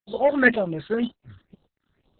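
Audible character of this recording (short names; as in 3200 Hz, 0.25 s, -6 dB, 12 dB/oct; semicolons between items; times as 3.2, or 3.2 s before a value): tremolo saw up 1.8 Hz, depth 80%; a quantiser's noise floor 12-bit, dither none; phasing stages 8, 2 Hz, lowest notch 680–2000 Hz; Opus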